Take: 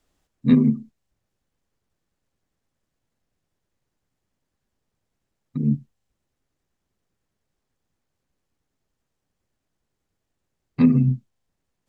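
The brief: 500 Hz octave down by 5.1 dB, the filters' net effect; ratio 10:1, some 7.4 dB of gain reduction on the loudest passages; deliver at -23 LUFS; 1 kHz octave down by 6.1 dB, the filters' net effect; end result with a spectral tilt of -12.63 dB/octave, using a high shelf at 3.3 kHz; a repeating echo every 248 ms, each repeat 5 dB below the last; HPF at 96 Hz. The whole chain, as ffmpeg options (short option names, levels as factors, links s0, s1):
-af "highpass=96,equalizer=f=500:t=o:g=-6,equalizer=f=1000:t=o:g=-5.5,highshelf=f=3300:g=-4,acompressor=threshold=0.112:ratio=10,aecho=1:1:248|496|744|992|1240|1488|1736:0.562|0.315|0.176|0.0988|0.0553|0.031|0.0173,volume=1.78"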